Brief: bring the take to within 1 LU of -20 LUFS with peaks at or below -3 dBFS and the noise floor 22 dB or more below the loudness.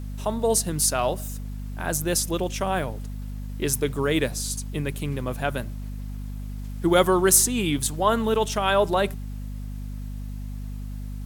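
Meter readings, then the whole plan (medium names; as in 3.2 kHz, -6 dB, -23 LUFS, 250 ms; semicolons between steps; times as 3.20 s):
hum 50 Hz; highest harmonic 250 Hz; hum level -30 dBFS; loudness -23.5 LUFS; peak level -3.5 dBFS; loudness target -20.0 LUFS
-> de-hum 50 Hz, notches 5; trim +3.5 dB; peak limiter -3 dBFS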